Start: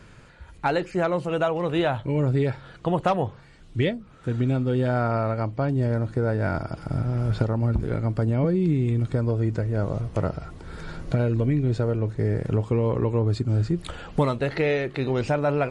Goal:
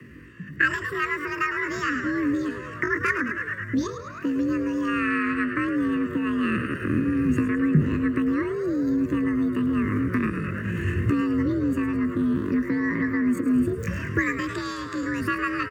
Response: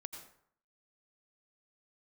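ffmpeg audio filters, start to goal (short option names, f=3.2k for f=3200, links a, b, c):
-filter_complex "[0:a]asetrate=80880,aresample=44100,atempo=0.545254,asplit=8[a][b][c][d][e][f][g][h];[b]adelay=106,afreqshift=98,volume=-11dB[i];[c]adelay=212,afreqshift=196,volume=-15.6dB[j];[d]adelay=318,afreqshift=294,volume=-20.2dB[k];[e]adelay=424,afreqshift=392,volume=-24.7dB[l];[f]adelay=530,afreqshift=490,volume=-29.3dB[m];[g]adelay=636,afreqshift=588,volume=-33.9dB[n];[h]adelay=742,afreqshift=686,volume=-38.5dB[o];[a][i][j][k][l][m][n][o]amix=inputs=8:normalize=0,dynaudnorm=f=110:g=11:m=6dB,aecho=1:1:1.1:0.32,acrossover=split=130|3000[p][q][r];[q]acompressor=threshold=-30dB:ratio=3[s];[p][s][r]amix=inputs=3:normalize=0,asuperstop=centerf=740:order=4:qfactor=0.82,highshelf=f=2.5k:t=q:w=3:g=-13,afreqshift=55,volume=3.5dB"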